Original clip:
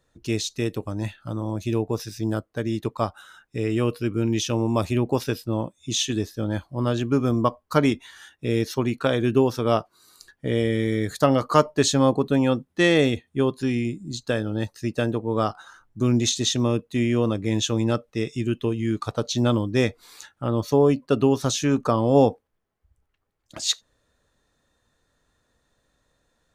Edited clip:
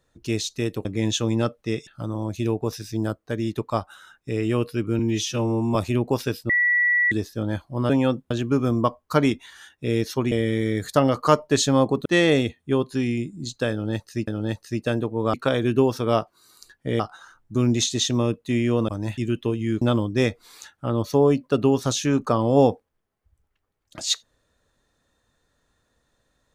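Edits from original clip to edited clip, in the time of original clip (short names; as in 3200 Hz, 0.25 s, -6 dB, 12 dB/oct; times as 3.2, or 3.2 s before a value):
0.85–1.14 swap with 17.34–18.36
4.26–4.77 stretch 1.5×
5.51–6.13 bleep 1950 Hz -16.5 dBFS
8.92–10.58 move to 15.45
12.32–12.73 move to 6.91
14.39–14.95 loop, 2 plays
19–19.4 cut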